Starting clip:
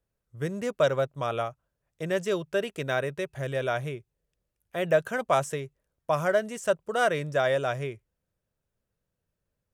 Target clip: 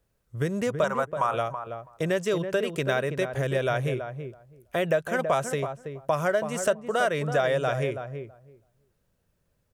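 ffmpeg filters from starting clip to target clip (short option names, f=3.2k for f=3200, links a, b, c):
-filter_complex "[0:a]asettb=1/sr,asplit=3[a][b][c];[a]atrim=end=0.844[d];[b]atrim=start=0.84:end=1.34,asetpts=PTS-STARTPTS,afade=t=in:d=0.004:c=qsin,afade=t=out:st=0.496:d=0.004:c=qsin,equalizer=f=125:t=o:w=1:g=-7,equalizer=f=250:t=o:w=1:g=-10,equalizer=f=500:t=o:w=1:g=-7,equalizer=f=1k:t=o:w=1:g=12,equalizer=f=4k:t=o:w=1:g=-11,equalizer=f=8k:t=o:w=1:g=8[e];[c]atrim=start=1.336[f];[d][e]acrossfade=d=0.004:c1=hsin:c2=qsin[g];[g][f]acrossfade=d=0.004:c1=qsin:c2=hsin,acompressor=threshold=-35dB:ratio=2.5,asplit=2[h][i];[i]adelay=328,lowpass=f=1.1k:p=1,volume=-7dB,asplit=2[j][k];[k]adelay=328,lowpass=f=1.1k:p=1,volume=0.15,asplit=2[l][m];[m]adelay=328,lowpass=f=1.1k:p=1,volume=0.15[n];[j][l][n]amix=inputs=3:normalize=0[o];[h][o]amix=inputs=2:normalize=0,volume=9dB"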